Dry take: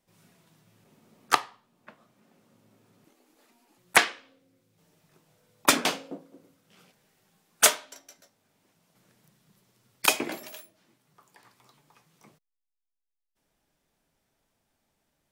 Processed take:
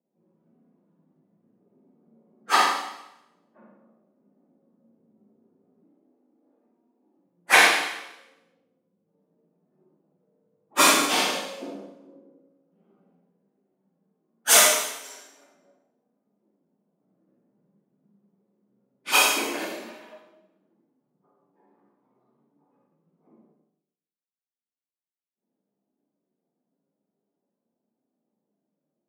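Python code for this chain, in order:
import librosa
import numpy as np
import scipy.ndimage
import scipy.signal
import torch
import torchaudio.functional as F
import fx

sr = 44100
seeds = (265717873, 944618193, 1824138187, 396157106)

y = fx.env_lowpass(x, sr, base_hz=390.0, full_db=-27.0)
y = scipy.signal.sosfilt(scipy.signal.butter(4, 190.0, 'highpass', fs=sr, output='sos'), y)
y = fx.hum_notches(y, sr, base_hz=60, count=8)
y = fx.stretch_vocoder_free(y, sr, factor=1.9)
y = fx.rev_schroeder(y, sr, rt60_s=0.84, comb_ms=31, drr_db=-2.5)
y = y * 10.0 ** (2.0 / 20.0)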